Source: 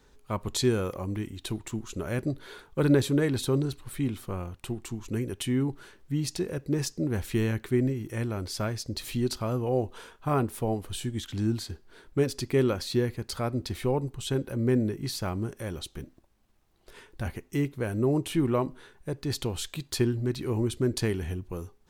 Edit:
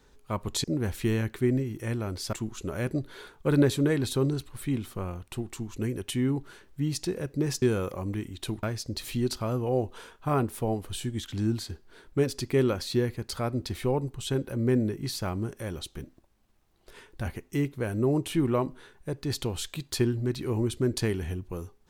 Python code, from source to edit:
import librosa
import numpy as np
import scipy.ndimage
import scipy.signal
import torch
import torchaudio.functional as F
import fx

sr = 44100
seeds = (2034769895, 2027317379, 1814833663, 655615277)

y = fx.edit(x, sr, fx.swap(start_s=0.64, length_s=1.01, other_s=6.94, other_length_s=1.69), tone=tone)